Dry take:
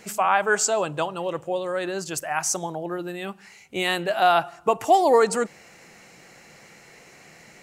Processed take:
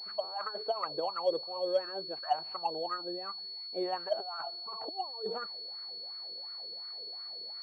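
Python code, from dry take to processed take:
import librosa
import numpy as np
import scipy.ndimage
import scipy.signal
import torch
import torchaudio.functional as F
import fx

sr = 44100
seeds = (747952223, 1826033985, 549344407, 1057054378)

y = fx.over_compress(x, sr, threshold_db=-24.0, ratio=-0.5)
y = fx.wah_lfo(y, sr, hz=2.8, low_hz=410.0, high_hz=1300.0, q=5.6)
y = fx.pwm(y, sr, carrier_hz=4400.0)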